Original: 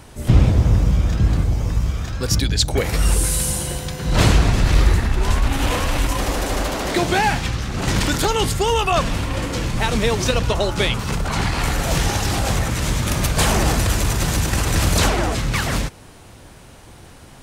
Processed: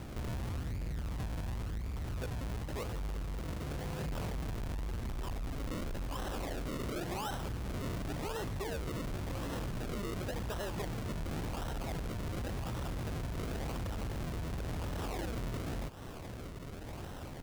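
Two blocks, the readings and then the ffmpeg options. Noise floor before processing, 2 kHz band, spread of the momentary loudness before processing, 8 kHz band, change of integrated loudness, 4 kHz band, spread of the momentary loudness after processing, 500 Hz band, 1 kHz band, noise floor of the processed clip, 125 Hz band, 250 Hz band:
-43 dBFS, -22.0 dB, 6 LU, -26.0 dB, -20.0 dB, -24.0 dB, 2 LU, -18.0 dB, -20.0 dB, -44 dBFS, -19.0 dB, -17.0 dB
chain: -af "acompressor=threshold=0.0355:ratio=6,aresample=8000,asoftclip=type=tanh:threshold=0.0188,aresample=44100,acrusher=samples=37:mix=1:aa=0.000001:lfo=1:lforange=37:lforate=0.92"

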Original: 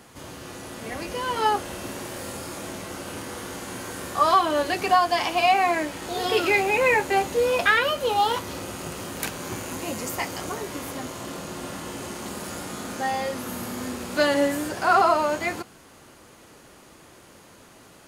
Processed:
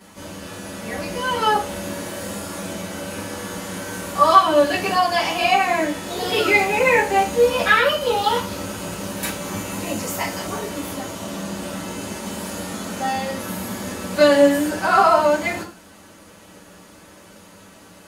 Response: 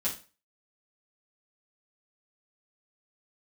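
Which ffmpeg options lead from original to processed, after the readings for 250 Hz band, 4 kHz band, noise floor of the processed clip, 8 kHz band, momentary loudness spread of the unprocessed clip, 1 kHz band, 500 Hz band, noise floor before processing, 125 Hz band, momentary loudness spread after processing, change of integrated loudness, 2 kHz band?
+6.0 dB, +4.5 dB, -46 dBFS, +4.0 dB, 15 LU, +3.5 dB, +5.5 dB, -51 dBFS, +5.5 dB, 15 LU, +4.5 dB, +4.0 dB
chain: -filter_complex "[1:a]atrim=start_sample=2205[s0];[0:a][s0]afir=irnorm=-1:irlink=0,volume=0.891"

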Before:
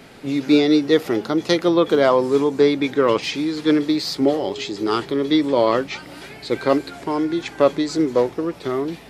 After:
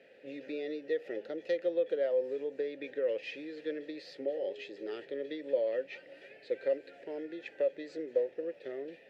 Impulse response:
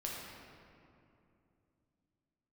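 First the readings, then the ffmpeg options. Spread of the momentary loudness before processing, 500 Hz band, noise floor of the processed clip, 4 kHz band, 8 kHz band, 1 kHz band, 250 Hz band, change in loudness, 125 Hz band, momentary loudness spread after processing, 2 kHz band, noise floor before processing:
9 LU, -13.5 dB, -58 dBFS, -24.5 dB, under -30 dB, -29.5 dB, -25.0 dB, -16.5 dB, under -30 dB, 11 LU, -17.0 dB, -41 dBFS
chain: -filter_complex "[0:a]acompressor=threshold=0.141:ratio=6,asplit=3[s0][s1][s2];[s0]bandpass=f=530:t=q:w=8,volume=1[s3];[s1]bandpass=f=1840:t=q:w=8,volume=0.501[s4];[s2]bandpass=f=2480:t=q:w=8,volume=0.355[s5];[s3][s4][s5]amix=inputs=3:normalize=0,volume=0.668"

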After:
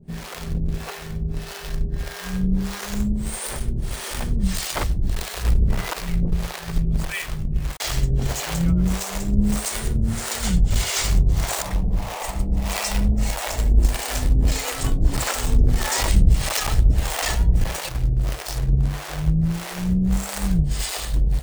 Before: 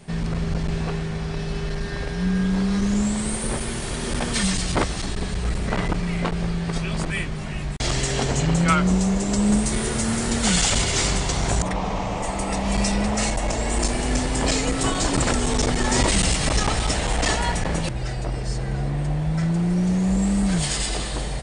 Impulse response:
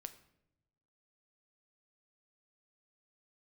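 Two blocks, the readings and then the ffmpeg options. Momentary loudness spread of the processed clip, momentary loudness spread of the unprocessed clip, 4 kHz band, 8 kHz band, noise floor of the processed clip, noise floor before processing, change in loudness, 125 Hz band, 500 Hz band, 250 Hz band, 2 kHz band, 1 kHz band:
8 LU, 8 LU, -3.0 dB, -3.0 dB, -34 dBFS, -28 dBFS, -0.5 dB, +1.5 dB, -6.5 dB, -4.0 dB, -3.0 dB, -4.5 dB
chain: -filter_complex "[0:a]asubboost=boost=3.5:cutoff=130,acrusher=bits=3:mode=log:mix=0:aa=0.000001,acrossover=split=430[s0][s1];[s0]aeval=exprs='val(0)*(1-1/2+1/2*cos(2*PI*1.6*n/s))':c=same[s2];[s1]aeval=exprs='val(0)*(1-1/2-1/2*cos(2*PI*1.6*n/s))':c=same[s3];[s2][s3]amix=inputs=2:normalize=0"

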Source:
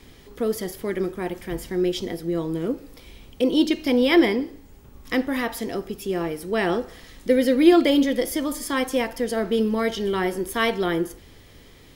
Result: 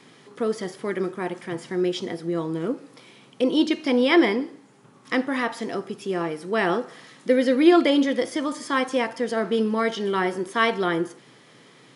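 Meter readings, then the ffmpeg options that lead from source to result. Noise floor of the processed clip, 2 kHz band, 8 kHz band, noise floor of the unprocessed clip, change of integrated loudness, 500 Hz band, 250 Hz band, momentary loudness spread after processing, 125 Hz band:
-53 dBFS, +1.5 dB, -5.5 dB, -49 dBFS, -0.5 dB, -0.5 dB, -1.0 dB, 12 LU, -1.5 dB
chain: -filter_complex "[0:a]afftfilt=real='re*between(b*sr/4096,110,11000)':imag='im*between(b*sr/4096,110,11000)':win_size=4096:overlap=0.75,equalizer=f=1200:w=1.1:g=6,acrossover=split=8200[s0][s1];[s1]acompressor=threshold=0.00224:ratio=4:attack=1:release=60[s2];[s0][s2]amix=inputs=2:normalize=0,volume=0.841"

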